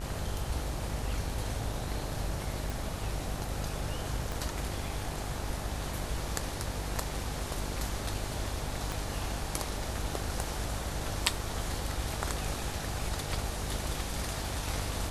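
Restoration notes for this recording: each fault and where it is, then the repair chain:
buzz 50 Hz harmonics 36 -39 dBFS
2.70 s: pop
4.32 s: pop
8.92 s: pop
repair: de-click; de-hum 50 Hz, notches 36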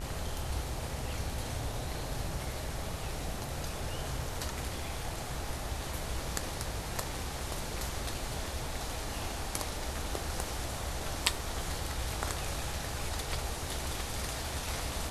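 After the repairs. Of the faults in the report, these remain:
4.32 s: pop
8.92 s: pop

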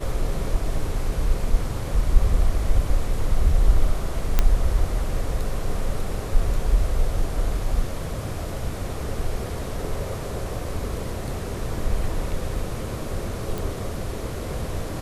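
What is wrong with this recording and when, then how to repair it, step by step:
4.39 s: pop -4 dBFS
13.58 s: pop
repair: de-click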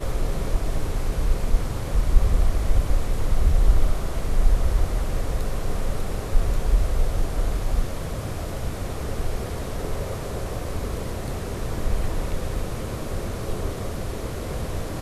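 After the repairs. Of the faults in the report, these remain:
nothing left

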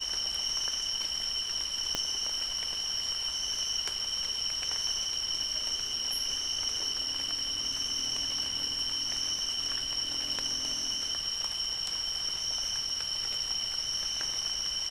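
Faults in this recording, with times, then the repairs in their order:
1.95 s: pop -14 dBFS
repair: de-click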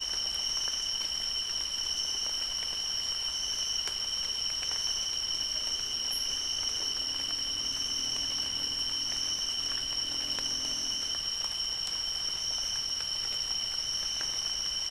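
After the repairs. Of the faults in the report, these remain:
1.95 s: pop

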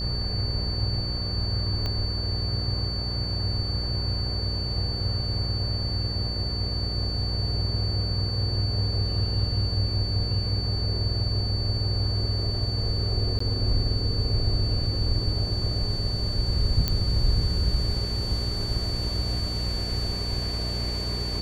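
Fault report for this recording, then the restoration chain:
buzz 60 Hz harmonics 10 -31 dBFS
whine 4.5 kHz -31 dBFS
1.86 s: pop -17 dBFS
13.39–13.40 s: dropout 14 ms
16.88 s: pop -10 dBFS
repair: de-click; band-stop 4.5 kHz, Q 30; de-hum 60 Hz, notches 10; interpolate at 13.39 s, 14 ms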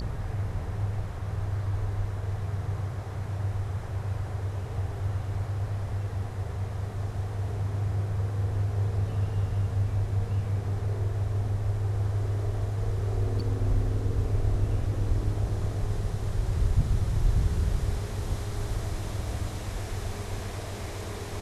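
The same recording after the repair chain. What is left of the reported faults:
1.86 s: pop

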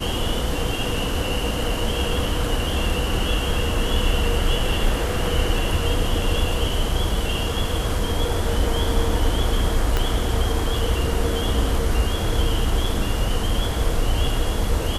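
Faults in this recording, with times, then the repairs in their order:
9.97 s: pop -7 dBFS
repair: de-click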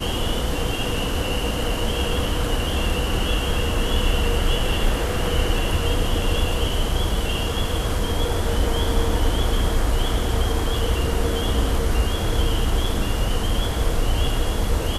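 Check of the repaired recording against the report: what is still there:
9.97 s: pop

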